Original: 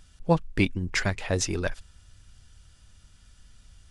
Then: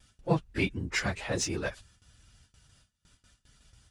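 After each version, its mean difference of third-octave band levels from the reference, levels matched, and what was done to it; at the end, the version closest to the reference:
3.5 dB: random phases in long frames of 50 ms
high-pass filter 100 Hz 6 dB per octave
noise gate with hold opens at −48 dBFS
in parallel at −8 dB: soft clipping −28.5 dBFS, distortion −5 dB
on the sum: level −4.5 dB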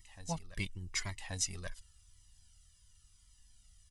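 5.5 dB: first-order pre-emphasis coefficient 0.8
comb filter 1 ms, depth 41%
backwards echo 1,131 ms −12 dB
flanger whose copies keep moving one way falling 0.91 Hz
level +1 dB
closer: first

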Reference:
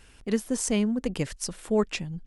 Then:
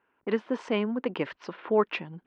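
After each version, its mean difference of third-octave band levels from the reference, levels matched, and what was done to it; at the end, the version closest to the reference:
7.0 dB: low-pass that shuts in the quiet parts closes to 1,500 Hz, open at −24 dBFS
noise gate −48 dBFS, range −17 dB
in parallel at −2 dB: downward compressor, threshold −36 dBFS, peak gain reduction 16 dB
on the sum: loudspeaker in its box 300–3,100 Hz, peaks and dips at 350 Hz +3 dB, 980 Hz +8 dB, 1,400 Hz +4 dB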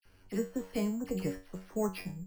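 10.5 dB: high-shelf EQ 2,700 Hz −11.5 dB
tuned comb filter 94 Hz, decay 0.32 s, harmonics all, mix 90%
all-pass dispersion lows, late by 55 ms, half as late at 2,100 Hz
bad sample-rate conversion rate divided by 6×, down filtered, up hold
level +4.5 dB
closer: first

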